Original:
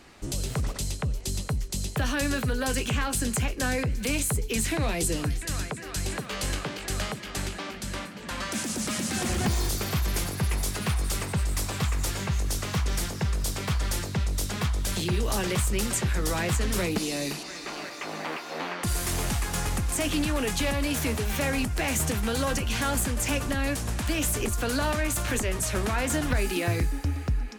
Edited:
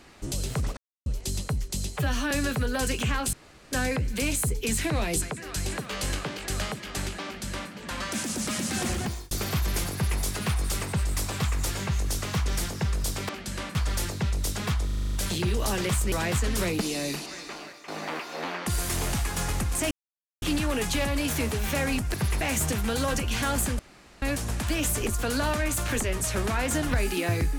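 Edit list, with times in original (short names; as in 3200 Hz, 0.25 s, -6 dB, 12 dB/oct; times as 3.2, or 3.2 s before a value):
0.77–1.06 mute
1.92–2.18 stretch 1.5×
3.2–3.59 room tone
5.09–5.62 cut
7.65–8.11 copy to 13.69
9.27–9.71 fade out
10.33–10.6 copy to 21.8
14.79 stutter 0.04 s, 8 plays
15.78–16.29 cut
17.48–18.05 fade out, to -12.5 dB
20.08 insert silence 0.51 s
23.18–23.61 room tone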